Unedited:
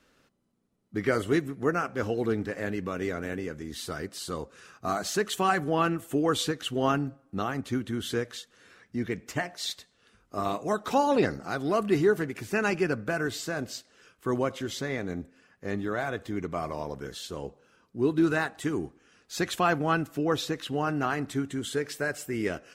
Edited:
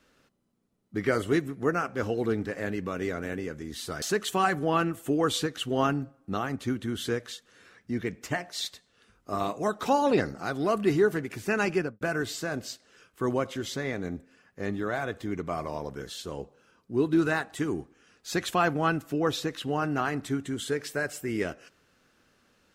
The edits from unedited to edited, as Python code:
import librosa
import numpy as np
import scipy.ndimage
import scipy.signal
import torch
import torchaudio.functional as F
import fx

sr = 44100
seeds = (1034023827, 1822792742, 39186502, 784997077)

y = fx.studio_fade_out(x, sr, start_s=12.81, length_s=0.25)
y = fx.edit(y, sr, fx.cut(start_s=4.02, length_s=1.05), tone=tone)